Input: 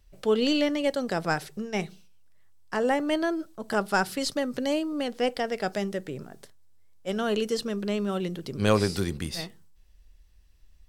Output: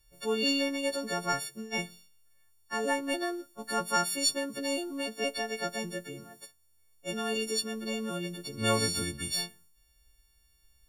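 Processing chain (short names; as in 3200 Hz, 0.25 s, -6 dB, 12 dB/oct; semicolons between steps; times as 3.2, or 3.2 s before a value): frequency quantiser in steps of 4 st; 2.79–3.63 transient shaper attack +3 dB, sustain -3 dB; gain -6.5 dB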